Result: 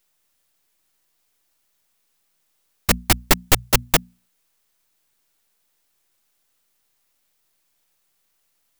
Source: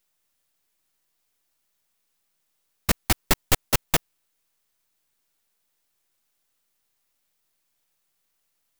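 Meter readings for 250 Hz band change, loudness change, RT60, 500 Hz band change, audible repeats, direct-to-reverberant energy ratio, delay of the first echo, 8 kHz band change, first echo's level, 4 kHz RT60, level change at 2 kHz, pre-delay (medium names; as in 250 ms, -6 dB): +4.5 dB, +5.0 dB, no reverb, +5.0 dB, no echo, no reverb, no echo, +5.0 dB, no echo, no reverb, +5.0 dB, no reverb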